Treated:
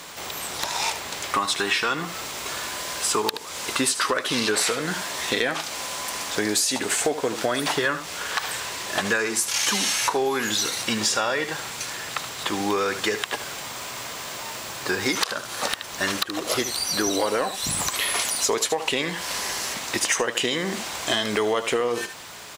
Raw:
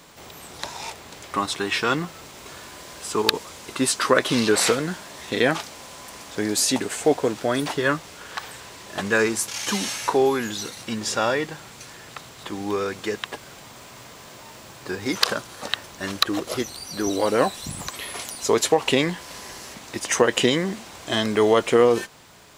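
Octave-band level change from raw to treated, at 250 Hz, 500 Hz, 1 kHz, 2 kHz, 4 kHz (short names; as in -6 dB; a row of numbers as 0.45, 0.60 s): -4.0, -4.5, 0.0, +1.5, +2.5 dB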